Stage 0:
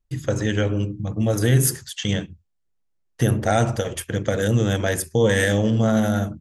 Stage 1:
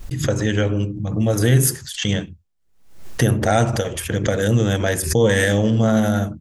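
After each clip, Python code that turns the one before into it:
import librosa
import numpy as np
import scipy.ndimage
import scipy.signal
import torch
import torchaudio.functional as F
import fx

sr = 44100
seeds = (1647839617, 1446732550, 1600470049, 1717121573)

y = fx.pre_swell(x, sr, db_per_s=84.0)
y = F.gain(torch.from_numpy(y), 2.0).numpy()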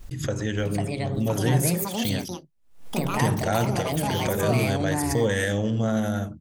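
y = fx.echo_pitch(x, sr, ms=570, semitones=5, count=2, db_per_echo=-3.0)
y = F.gain(torch.from_numpy(y), -7.5).numpy()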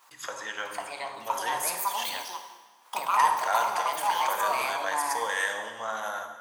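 y = fx.highpass_res(x, sr, hz=1000.0, q=4.9)
y = fx.rev_plate(y, sr, seeds[0], rt60_s=1.4, hf_ratio=0.9, predelay_ms=0, drr_db=5.0)
y = F.gain(torch.from_numpy(y), -3.5).numpy()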